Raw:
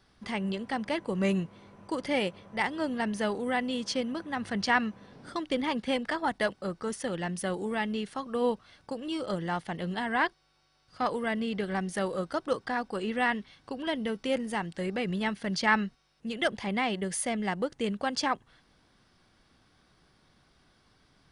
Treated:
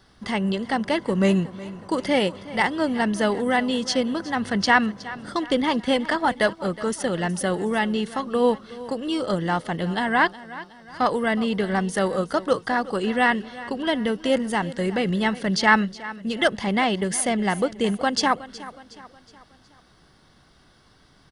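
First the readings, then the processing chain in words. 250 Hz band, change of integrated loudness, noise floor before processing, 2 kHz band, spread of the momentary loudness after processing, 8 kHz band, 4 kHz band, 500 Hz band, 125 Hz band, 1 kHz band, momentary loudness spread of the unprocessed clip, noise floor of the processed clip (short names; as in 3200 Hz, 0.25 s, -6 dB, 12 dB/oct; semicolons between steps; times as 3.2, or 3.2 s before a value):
+8.0 dB, +8.0 dB, -66 dBFS, +7.5 dB, 9 LU, +8.0 dB, +8.0 dB, +8.0 dB, +8.0 dB, +8.0 dB, 7 LU, -56 dBFS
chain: notch 2400 Hz, Q 7.9; feedback echo 0.367 s, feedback 46%, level -17 dB; gain +8 dB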